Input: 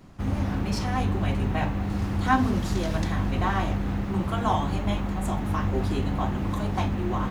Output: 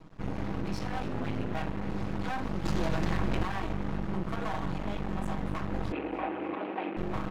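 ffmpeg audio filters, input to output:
ffmpeg -i in.wav -filter_complex "[0:a]aemphasis=mode=reproduction:type=50fm,aecho=1:1:6.3:0.88,alimiter=limit=-17.5dB:level=0:latency=1:release=73,asettb=1/sr,asplit=3[link_01][link_02][link_03];[link_01]atrim=end=2.654[link_04];[link_02]atrim=start=2.65:end=3.43,asetpts=PTS-STARTPTS,afade=type=in:duration=0.004:curve=qsin,afade=type=out:start_time=0.776:duration=0.004:curve=qsin,acontrast=83[link_05];[link_03]atrim=start=3.426[link_06];[link_04][link_05]acrossfade=duration=0.004:curve1=hsin:curve2=qsin[link_07];[link_07][link_06]acrossfade=duration=0.004:curve1=qsin:curve2=hsin,asoftclip=type=tanh:threshold=-18dB,asettb=1/sr,asplit=3[link_08][link_09][link_10];[link_08]atrim=end=1.034[link_11];[link_09]atrim=start=1.03:end=1.54,asetpts=PTS-STARTPTS,afade=type=in:duration=0.004:curve=qsin,afade=type=out:start_time=0.506:duration=0.004:curve=qsin,afreqshift=60[link_12];[link_10]atrim=start=1.536[link_13];[link_11][link_12]acrossfade=duration=0.004:curve1=hsin:curve2=qsin[link_14];[link_14][link_13]acrossfade=duration=0.004:curve1=qsin:curve2=hsin,aeval=exprs='max(val(0),0)':channel_layout=same,asettb=1/sr,asplit=3[link_15][link_16][link_17];[link_15]atrim=end=5.924[link_18];[link_16]atrim=start=5.92:end=6.97,asetpts=PTS-STARTPTS,afade=type=in:duration=0.004:curve=qsin,afade=type=out:start_time=1.046:duration=0.004:curve=qsin,highpass=frequency=270:width=0.5412,highpass=frequency=270:width=1.3066,equalizer=frequency=330:width_type=q:width=4:gain=8,equalizer=frequency=500:width_type=q:width=4:gain=4,equalizer=frequency=770:width_type=q:width=4:gain=5,equalizer=frequency=2500:width_type=q:width=4:gain=8,lowpass=frequency=3000:width=0.5412,lowpass=frequency=3000:width=1.3066[link_19];[link_17]atrim=start=6.966[link_20];[link_18][link_19]acrossfade=duration=0.004:curve1=hsin:curve2=qsin[link_21];[link_21][link_20]acrossfade=duration=0.004:curve1=qsin:curve2=hsin,asplit=5[link_22][link_23][link_24][link_25][link_26];[link_23]adelay=292,afreqshift=44,volume=-17.5dB[link_27];[link_24]adelay=584,afreqshift=88,volume=-24.8dB[link_28];[link_25]adelay=876,afreqshift=132,volume=-32.2dB[link_29];[link_26]adelay=1168,afreqshift=176,volume=-39.5dB[link_30];[link_22][link_27][link_28][link_29][link_30]amix=inputs=5:normalize=0,volume=-2dB" out.wav

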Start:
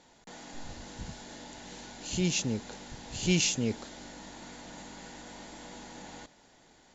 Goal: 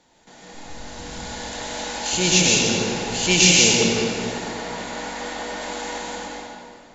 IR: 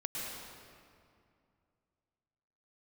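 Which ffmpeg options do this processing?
-filter_complex "[0:a]asettb=1/sr,asplit=3[link_01][link_02][link_03];[link_01]atrim=end=4.324[link_04];[link_02]atrim=start=4.32:end=5.61,asetpts=PTS-STARTPTS,afade=type=in:duration=0.004:curve=qsin,afade=type=out:start_time=1.286:duration=0.004:curve=qsin,highshelf=frequency=4600:gain=-7[link_05];[link_03]atrim=start=5.606[link_06];[link_04][link_05]acrossfade=duration=0.004:curve1=hsin:curve2=qsin[link_07];[link_07][link_06]acrossfade=duration=0.004:curve1=qsin:curve2=hsin,acrossover=split=400[link_08][link_09];[link_09]dynaudnorm=framelen=260:gausssize=9:maxgain=14dB[link_10];[link_08][link_10]amix=inputs=2:normalize=0[link_11];[1:a]atrim=start_sample=2205[link_12];[link_11][link_12]afir=irnorm=-1:irlink=0,volume=3dB"

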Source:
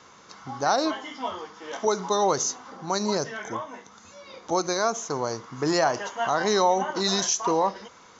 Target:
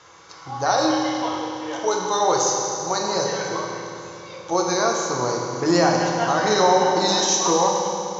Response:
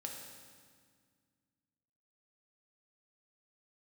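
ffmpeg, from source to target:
-filter_complex "[0:a]asetnsamples=nb_out_samples=441:pad=0,asendcmd='4.66 equalizer g -2',equalizer=frequency=220:width_type=o:width=0.52:gain=-12.5[link_01];[1:a]atrim=start_sample=2205,asetrate=27342,aresample=44100[link_02];[link_01][link_02]afir=irnorm=-1:irlink=0,volume=4dB"

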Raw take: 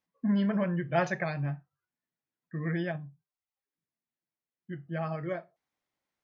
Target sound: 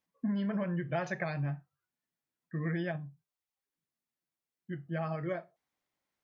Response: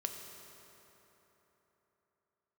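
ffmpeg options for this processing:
-af "acompressor=threshold=-29dB:ratio=10"

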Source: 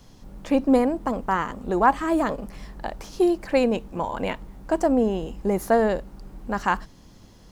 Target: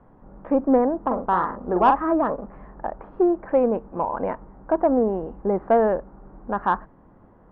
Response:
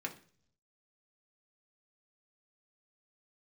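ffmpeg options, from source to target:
-filter_complex "[0:a]lowpass=frequency=1500:width=0.5412,lowpass=frequency=1500:width=1.3066,asettb=1/sr,asplit=3[link_01][link_02][link_03];[link_01]atrim=end=1.004[link_04];[link_02]atrim=start=1:end=2.12,asetpts=PTS-STARTPTS,afade=type=in:duration=0.004:curve=qsin,afade=type=out:start_time=1.116:duration=0.004:curve=qsin,asplit=2[link_05][link_06];[link_06]adelay=44,volume=-6dB[link_07];[link_05][link_07]amix=inputs=2:normalize=0,atrim=end_sample=49392[link_08];[link_03]atrim=start=2.116[link_09];[link_04][link_08]acrossfade=duration=0.004:curve1=hsin:curve2=qsin[link_10];[link_10][link_09]acrossfade=duration=0.004:curve1=qsin:curve2=hsin,asplit=2[link_11][link_12];[link_12]highpass=frequency=720:poles=1,volume=12dB,asoftclip=type=tanh:threshold=-4dB[link_13];[link_11][link_13]amix=inputs=2:normalize=0,lowpass=frequency=1100:poles=1,volume=-6dB"

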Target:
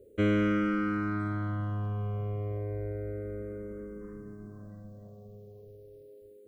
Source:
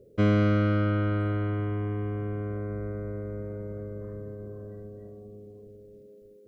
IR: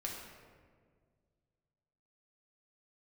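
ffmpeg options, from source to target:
-filter_complex "[0:a]asplit=2[link_01][link_02];[link_02]aeval=exprs='clip(val(0),-1,0.0668)':channel_layout=same,volume=-8dB[link_03];[link_01][link_03]amix=inputs=2:normalize=0,highshelf=frequency=3700:gain=5.5,asplit=2[link_04][link_05];[link_05]afreqshift=-0.31[link_06];[link_04][link_06]amix=inputs=2:normalize=1,volume=-3dB"

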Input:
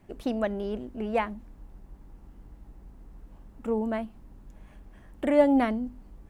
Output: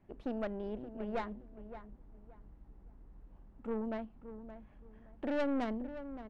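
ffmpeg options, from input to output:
ffmpeg -i in.wav -filter_complex "[0:a]adynamicsmooth=sensitivity=0.5:basefreq=3300,aeval=exprs='(tanh(15.8*val(0)+0.55)-tanh(0.55))/15.8':channel_layout=same,asplit=2[link_01][link_02];[link_02]adelay=571,lowpass=frequency=1800:poles=1,volume=-11.5dB,asplit=2[link_03][link_04];[link_04]adelay=571,lowpass=frequency=1800:poles=1,volume=0.25,asplit=2[link_05][link_06];[link_06]adelay=571,lowpass=frequency=1800:poles=1,volume=0.25[link_07];[link_01][link_03][link_05][link_07]amix=inputs=4:normalize=0,volume=-6dB" out.wav

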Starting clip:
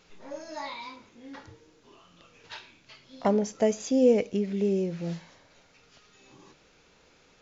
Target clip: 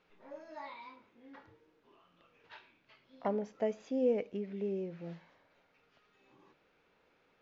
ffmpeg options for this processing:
ffmpeg -i in.wav -af "lowpass=2500,lowshelf=frequency=160:gain=-10,volume=-8dB" out.wav

